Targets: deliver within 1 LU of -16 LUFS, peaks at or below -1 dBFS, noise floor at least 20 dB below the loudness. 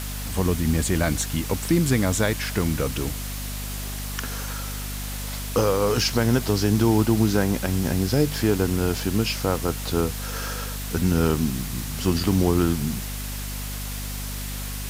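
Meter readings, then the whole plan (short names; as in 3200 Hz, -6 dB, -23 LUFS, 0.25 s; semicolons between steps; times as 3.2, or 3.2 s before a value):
hum 50 Hz; harmonics up to 250 Hz; hum level -30 dBFS; noise floor -31 dBFS; noise floor target -44 dBFS; loudness -24.0 LUFS; peak -7.0 dBFS; loudness target -16.0 LUFS
-> notches 50/100/150/200/250 Hz; denoiser 13 dB, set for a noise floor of -31 dBFS; gain +8 dB; limiter -1 dBFS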